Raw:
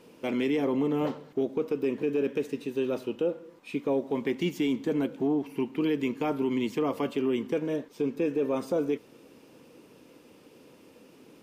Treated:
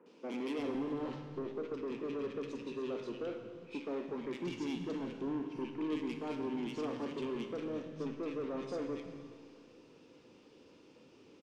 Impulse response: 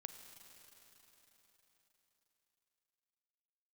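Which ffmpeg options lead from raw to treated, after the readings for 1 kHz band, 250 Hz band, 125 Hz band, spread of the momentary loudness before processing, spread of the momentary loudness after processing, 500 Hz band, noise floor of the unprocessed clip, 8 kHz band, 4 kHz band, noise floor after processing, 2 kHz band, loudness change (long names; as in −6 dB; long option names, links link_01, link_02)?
−8.5 dB, −9.5 dB, −9.5 dB, 5 LU, 8 LU, −11.0 dB, −56 dBFS, can't be measured, −8.0 dB, −61 dBFS, −9.5 dB, −10.0 dB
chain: -filter_complex "[0:a]lowpass=frequency=6400:width=0.5412,lowpass=frequency=6400:width=1.3066,equalizer=frequency=650:width=2.6:gain=-4.5,acrossover=split=180[link_01][link_02];[link_02]asoftclip=type=tanh:threshold=-31dB[link_03];[link_01][link_03]amix=inputs=2:normalize=0,acrossover=split=180|1700[link_04][link_05][link_06];[link_06]adelay=60[link_07];[link_04]adelay=340[link_08];[link_08][link_05][link_07]amix=inputs=3:normalize=0[link_09];[1:a]atrim=start_sample=2205,asetrate=88200,aresample=44100[link_10];[link_09][link_10]afir=irnorm=-1:irlink=0,volume=7dB"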